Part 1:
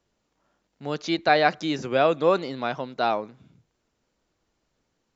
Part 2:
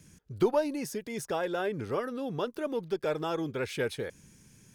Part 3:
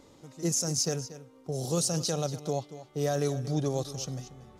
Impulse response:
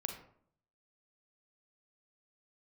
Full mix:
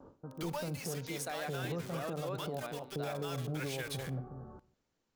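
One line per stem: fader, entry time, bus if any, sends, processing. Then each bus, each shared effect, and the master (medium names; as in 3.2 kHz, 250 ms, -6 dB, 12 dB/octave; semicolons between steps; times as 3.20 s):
-7.5 dB, 0.00 s, no send, auto duck -11 dB, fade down 0.20 s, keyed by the second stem
-0.5 dB, 0.00 s, send -10 dB, amplifier tone stack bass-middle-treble 10-0-10; bit crusher 8-bit
+0.5 dB, 0.00 s, send -12 dB, gate with hold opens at -45 dBFS; steep low-pass 1.6 kHz 96 dB/octave; compression, threshold -36 dBFS, peak gain reduction 11.5 dB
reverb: on, RT60 0.60 s, pre-delay 35 ms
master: peak limiter -28.5 dBFS, peak gain reduction 6 dB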